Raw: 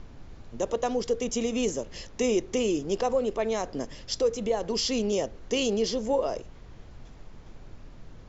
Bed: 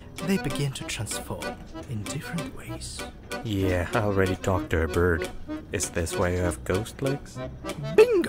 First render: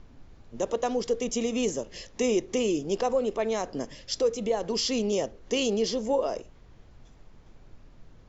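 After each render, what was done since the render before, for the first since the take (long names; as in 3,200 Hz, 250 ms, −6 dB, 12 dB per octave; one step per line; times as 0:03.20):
noise reduction from a noise print 6 dB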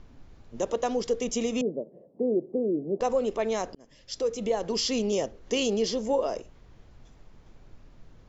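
0:01.61–0:03.01: Chebyshev band-pass filter 150–650 Hz, order 3
0:03.75–0:04.46: fade in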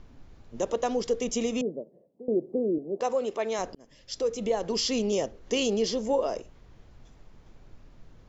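0:01.49–0:02.28: fade out, to −20.5 dB
0:02.78–0:03.59: high-pass filter 360 Hz 6 dB per octave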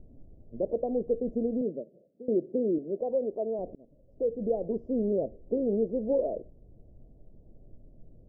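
elliptic low-pass filter 640 Hz, stop band 60 dB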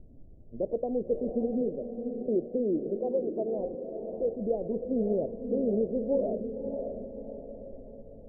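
high-frequency loss of the air 390 metres
feedback delay with all-pass diffusion 576 ms, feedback 48%, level −6.5 dB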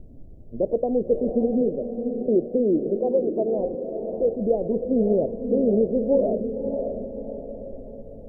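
level +7.5 dB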